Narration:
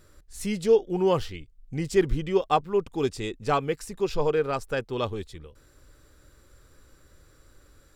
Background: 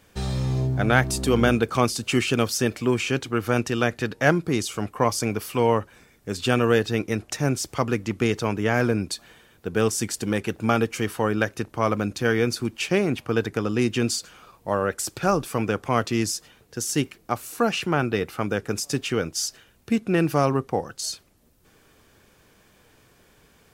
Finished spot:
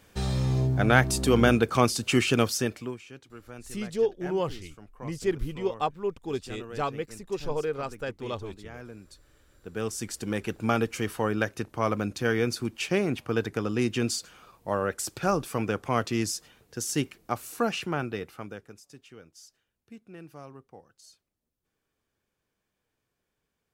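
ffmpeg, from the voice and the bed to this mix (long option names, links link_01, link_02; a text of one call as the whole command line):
ffmpeg -i stem1.wav -i stem2.wav -filter_complex "[0:a]adelay=3300,volume=-5.5dB[link_01];[1:a]volume=17dB,afade=type=out:start_time=2.41:duration=0.58:silence=0.0891251,afade=type=in:start_time=9.25:duration=1.34:silence=0.125893,afade=type=out:start_time=17.53:duration=1.25:silence=0.0944061[link_02];[link_01][link_02]amix=inputs=2:normalize=0" out.wav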